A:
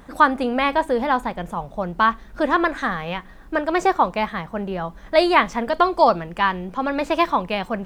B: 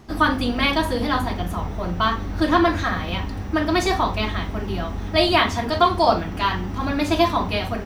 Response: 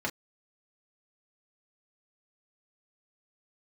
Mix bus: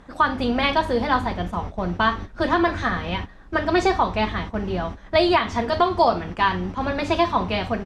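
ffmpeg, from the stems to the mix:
-filter_complex "[0:a]volume=-2dB,asplit=2[link_01][link_02];[1:a]adelay=0.5,volume=-3.5dB[link_03];[link_02]apad=whole_len=346324[link_04];[link_03][link_04]sidechaingate=range=-33dB:threshold=-35dB:ratio=16:detection=peak[link_05];[link_01][link_05]amix=inputs=2:normalize=0,lowpass=6500,alimiter=limit=-7.5dB:level=0:latency=1:release=214"

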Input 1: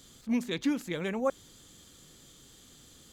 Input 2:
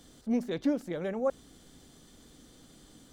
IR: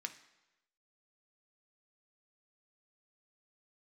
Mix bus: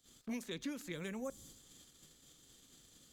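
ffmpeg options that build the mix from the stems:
-filter_complex "[0:a]highshelf=frequency=2600:gain=4.5,volume=-2dB,asplit=2[link_01][link_02];[link_02]volume=-12.5dB[link_03];[1:a]volume=-1,volume=-8dB[link_04];[2:a]atrim=start_sample=2205[link_05];[link_03][link_05]afir=irnorm=-1:irlink=0[link_06];[link_01][link_04][link_06]amix=inputs=3:normalize=0,agate=range=-21dB:threshold=-51dB:ratio=16:detection=peak,acrossover=split=330|5300[link_07][link_08][link_09];[link_07]acompressor=threshold=-43dB:ratio=4[link_10];[link_08]acompressor=threshold=-48dB:ratio=4[link_11];[link_09]acompressor=threshold=-55dB:ratio=4[link_12];[link_10][link_11][link_12]amix=inputs=3:normalize=0"

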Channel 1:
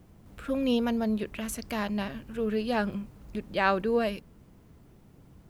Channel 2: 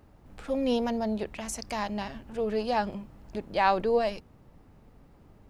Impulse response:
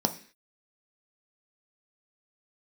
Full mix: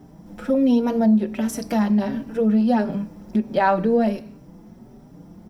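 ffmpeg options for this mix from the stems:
-filter_complex "[0:a]asplit=2[link_01][link_02];[link_02]adelay=4.7,afreqshift=1.4[link_03];[link_01][link_03]amix=inputs=2:normalize=1,volume=1.5dB,asplit=2[link_04][link_05];[link_05]volume=-3dB[link_06];[1:a]lowpass=frequency=2100:width=0.5412,lowpass=frequency=2100:width=1.3066,volume=0.5dB[link_07];[2:a]atrim=start_sample=2205[link_08];[link_06][link_08]afir=irnorm=-1:irlink=0[link_09];[link_04][link_07][link_09]amix=inputs=3:normalize=0,acompressor=threshold=-19dB:ratio=2"

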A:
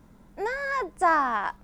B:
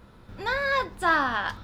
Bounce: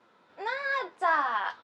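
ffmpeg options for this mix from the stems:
ffmpeg -i stem1.wav -i stem2.wav -filter_complex "[0:a]volume=0dB[link_01];[1:a]alimiter=limit=-16.5dB:level=0:latency=1,adelay=6.5,volume=-2dB[link_02];[link_01][link_02]amix=inputs=2:normalize=0,flanger=delay=7.9:depth=5.5:regen=57:speed=1.5:shape=triangular,highpass=500,lowpass=4700" out.wav

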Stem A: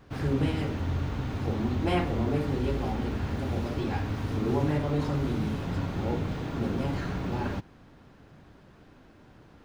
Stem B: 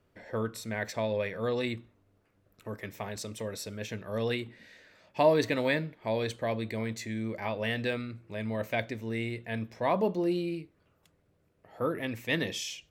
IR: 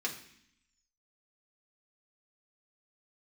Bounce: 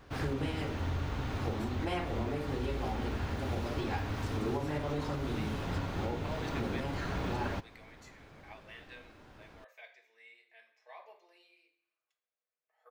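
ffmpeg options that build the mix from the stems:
-filter_complex "[0:a]volume=1.5dB,asplit=2[link_01][link_02];[1:a]highpass=frequency=600:width=0.5412,highpass=frequency=600:width=1.3066,adelay=1050,volume=-16.5dB,asplit=2[link_03][link_04];[link_04]volume=-6dB[link_05];[link_02]apad=whole_len=615427[link_06];[link_03][link_06]sidechaingate=range=-33dB:threshold=-50dB:ratio=16:detection=peak[link_07];[2:a]atrim=start_sample=2205[link_08];[link_05][link_08]afir=irnorm=-1:irlink=0[link_09];[link_01][link_07][link_09]amix=inputs=3:normalize=0,equalizer=frequency=170:width=0.61:gain=-7,alimiter=level_in=0.5dB:limit=-24dB:level=0:latency=1:release=416,volume=-0.5dB"

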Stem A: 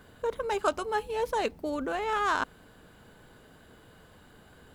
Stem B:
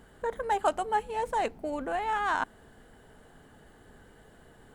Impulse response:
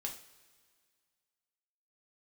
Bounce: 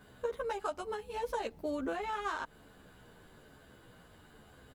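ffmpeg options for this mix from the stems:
-filter_complex "[0:a]asplit=2[link_01][link_02];[link_02]adelay=11.6,afreqshift=-1.1[link_03];[link_01][link_03]amix=inputs=2:normalize=1,volume=0dB[link_04];[1:a]adelay=15,volume=-18.5dB,asplit=2[link_05][link_06];[link_06]apad=whole_len=209631[link_07];[link_04][link_07]sidechaincompress=threshold=-50dB:ratio=8:attack=16:release=199[link_08];[link_08][link_05]amix=inputs=2:normalize=0"

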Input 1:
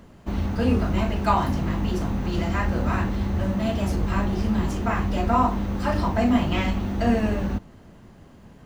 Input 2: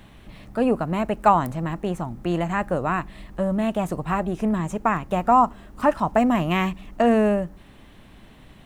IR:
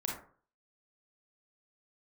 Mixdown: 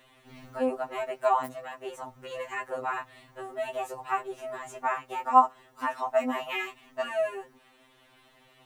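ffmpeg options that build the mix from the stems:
-filter_complex "[0:a]highshelf=frequency=5500:gain=10.5,volume=-18dB[link_01];[1:a]highpass=480,volume=-3dB,asplit=2[link_02][link_03];[link_03]apad=whole_len=381789[link_04];[link_01][link_04]sidechaincompress=threshold=-36dB:ratio=8:attack=40:release=1230[link_05];[link_05][link_02]amix=inputs=2:normalize=0,afftfilt=real='re*2.45*eq(mod(b,6),0)':imag='im*2.45*eq(mod(b,6),0)':win_size=2048:overlap=0.75"

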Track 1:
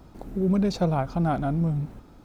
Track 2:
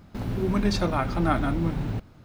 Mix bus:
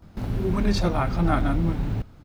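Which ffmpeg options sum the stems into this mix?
ffmpeg -i stem1.wav -i stem2.wav -filter_complex "[0:a]volume=-8dB[link_01];[1:a]lowshelf=frequency=88:gain=7.5,adelay=23,volume=-0.5dB[link_02];[link_01][link_02]amix=inputs=2:normalize=0" out.wav

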